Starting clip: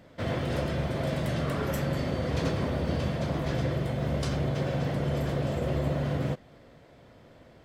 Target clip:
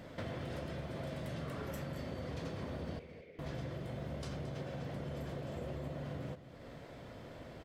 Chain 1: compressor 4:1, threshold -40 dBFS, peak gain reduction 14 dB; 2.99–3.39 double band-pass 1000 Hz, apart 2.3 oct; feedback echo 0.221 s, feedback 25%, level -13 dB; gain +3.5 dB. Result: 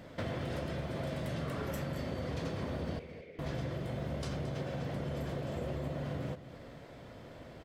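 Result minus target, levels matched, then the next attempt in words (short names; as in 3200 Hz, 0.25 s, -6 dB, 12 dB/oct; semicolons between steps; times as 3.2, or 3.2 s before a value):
compressor: peak gain reduction -4.5 dB
compressor 4:1, threshold -46 dBFS, peak gain reduction 18.5 dB; 2.99–3.39 double band-pass 1000 Hz, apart 2.3 oct; feedback echo 0.221 s, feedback 25%, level -13 dB; gain +3.5 dB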